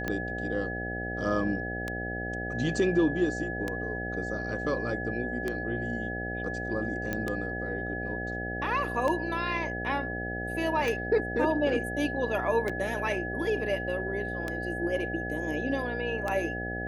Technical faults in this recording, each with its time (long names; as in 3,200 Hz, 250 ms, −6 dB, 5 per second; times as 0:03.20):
mains buzz 60 Hz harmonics 13 −36 dBFS
scratch tick 33 1/3 rpm −17 dBFS
whistle 1,700 Hz −35 dBFS
0:07.13: click −17 dBFS
0:12.69: drop-out 4.8 ms